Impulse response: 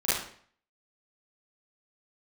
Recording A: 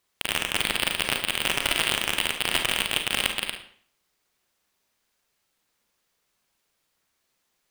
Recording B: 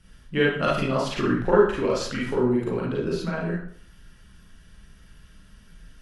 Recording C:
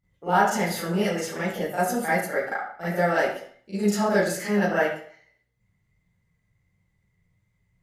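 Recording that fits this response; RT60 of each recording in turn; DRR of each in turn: C; 0.55, 0.55, 0.55 seconds; 4.0, −6.0, −12.5 decibels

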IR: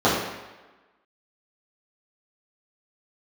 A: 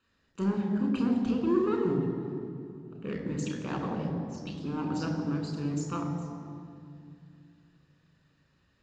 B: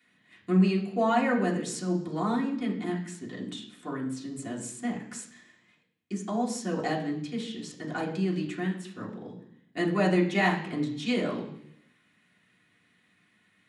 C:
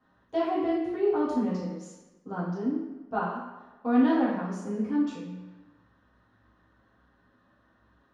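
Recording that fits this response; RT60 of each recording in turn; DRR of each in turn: C; 2.4, 0.70, 1.2 seconds; 1.5, −4.0, −10.5 decibels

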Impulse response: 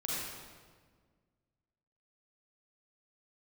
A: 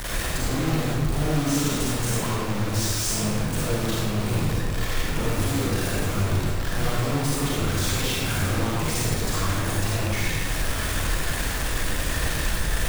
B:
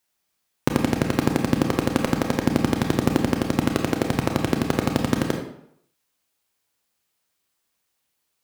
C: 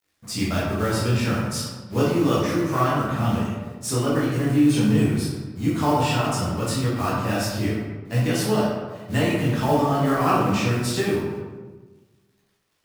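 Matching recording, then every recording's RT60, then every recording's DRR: A; 1.6, 0.70, 1.3 seconds; −6.5, 3.0, −8.0 decibels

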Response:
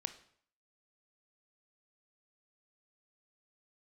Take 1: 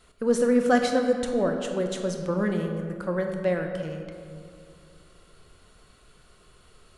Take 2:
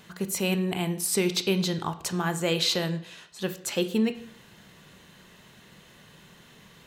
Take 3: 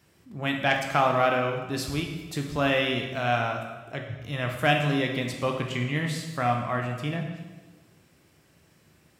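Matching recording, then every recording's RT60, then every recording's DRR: 2; 2.3, 0.60, 1.3 seconds; 4.0, 10.0, 2.0 decibels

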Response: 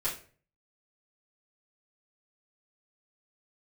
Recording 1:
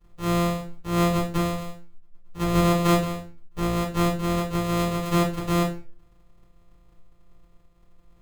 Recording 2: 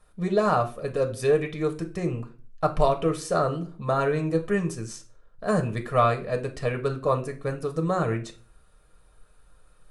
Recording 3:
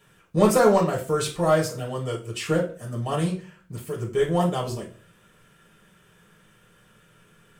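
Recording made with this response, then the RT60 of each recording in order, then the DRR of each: 1; 0.40, 0.40, 0.40 seconds; −9.5, 4.0, −3.5 decibels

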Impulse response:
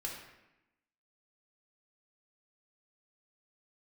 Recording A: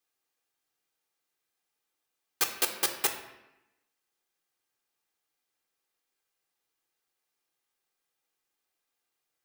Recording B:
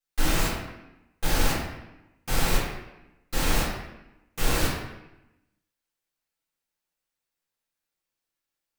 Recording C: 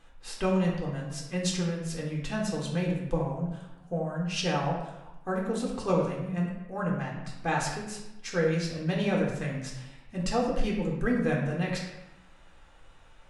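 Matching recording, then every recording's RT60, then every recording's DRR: C; 0.95, 0.90, 0.90 seconds; 5.0, −7.5, −1.5 decibels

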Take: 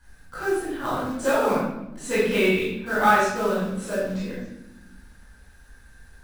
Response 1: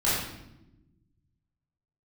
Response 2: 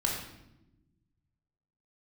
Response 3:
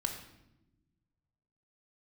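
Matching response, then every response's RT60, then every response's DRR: 1; 0.95, 0.95, 0.95 seconds; −11.0, −2.5, 2.5 decibels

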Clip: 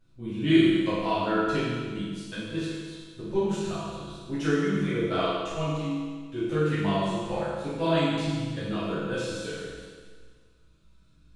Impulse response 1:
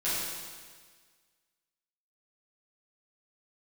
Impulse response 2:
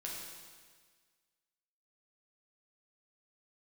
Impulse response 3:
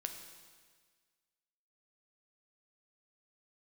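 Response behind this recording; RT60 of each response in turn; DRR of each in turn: 1; 1.6, 1.6, 1.6 seconds; −12.0, −3.5, 5.0 decibels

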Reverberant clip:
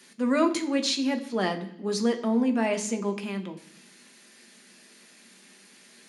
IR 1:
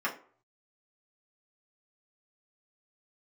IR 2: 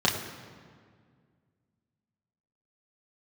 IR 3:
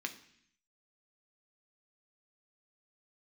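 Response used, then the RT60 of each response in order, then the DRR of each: 3; non-exponential decay, 1.9 s, 0.65 s; −4.5, −4.0, 5.0 decibels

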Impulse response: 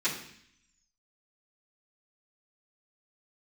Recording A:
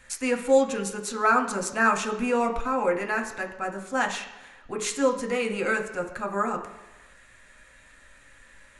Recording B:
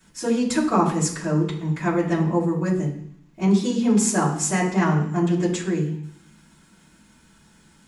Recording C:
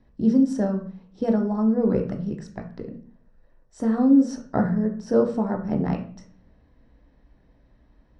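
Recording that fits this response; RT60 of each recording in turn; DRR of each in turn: B; 1.1, 0.65, 0.45 seconds; 2.5, −13.5, 3.0 decibels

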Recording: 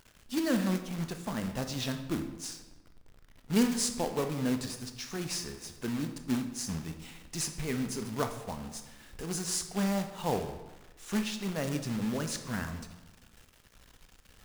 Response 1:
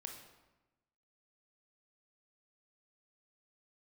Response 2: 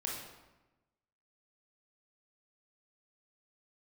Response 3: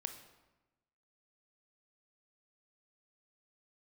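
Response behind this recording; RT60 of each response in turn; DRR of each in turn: 3; 1.1, 1.1, 1.1 seconds; 2.5, −3.0, 7.0 decibels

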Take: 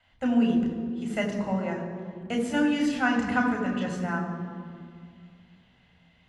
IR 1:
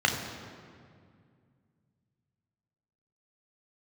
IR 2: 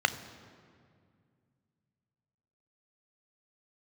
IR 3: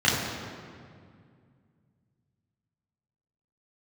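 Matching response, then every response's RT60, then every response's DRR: 1; 2.2, 2.2, 2.2 seconds; 1.5, 11.0, −7.5 decibels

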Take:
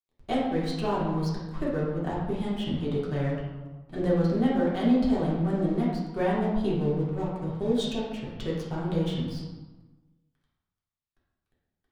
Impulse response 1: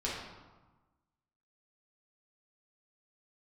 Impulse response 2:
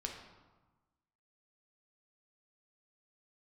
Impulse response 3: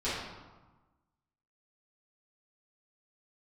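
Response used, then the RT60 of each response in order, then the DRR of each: 1; 1.2, 1.2, 1.2 seconds; −6.5, 1.0, −13.5 decibels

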